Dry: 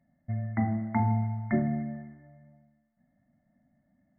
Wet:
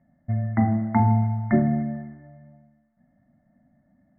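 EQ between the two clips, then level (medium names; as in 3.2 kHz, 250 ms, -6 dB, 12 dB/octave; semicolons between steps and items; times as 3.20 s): low-pass 1.9 kHz 24 dB/octave; +7.0 dB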